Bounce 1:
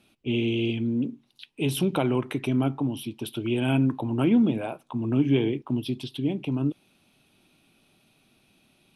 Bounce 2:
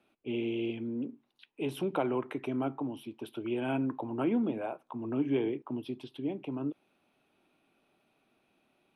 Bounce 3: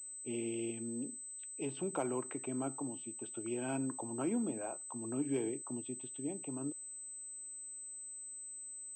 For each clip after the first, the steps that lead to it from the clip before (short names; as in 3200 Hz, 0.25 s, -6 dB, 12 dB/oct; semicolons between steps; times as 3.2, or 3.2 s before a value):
three-band isolator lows -13 dB, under 290 Hz, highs -14 dB, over 2100 Hz; gain -3 dB
pulse-width modulation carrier 8100 Hz; gain -6 dB